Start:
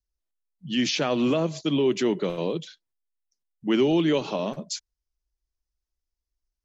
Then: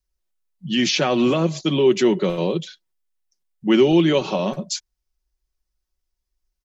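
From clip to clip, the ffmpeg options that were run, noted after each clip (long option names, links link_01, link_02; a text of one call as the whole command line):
ffmpeg -i in.wav -af "aecho=1:1:5.4:0.42,volume=5dB" out.wav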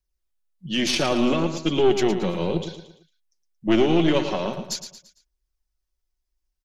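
ffmpeg -i in.wav -filter_complex "[0:a]aphaser=in_gain=1:out_gain=1:delay=3.9:decay=0.24:speed=0.38:type=triangular,aeval=exprs='(tanh(3.55*val(0)+0.65)-tanh(0.65))/3.55':channel_layout=same,asplit=2[link_01][link_02];[link_02]aecho=0:1:113|226|339|452:0.335|0.137|0.0563|0.0231[link_03];[link_01][link_03]amix=inputs=2:normalize=0" out.wav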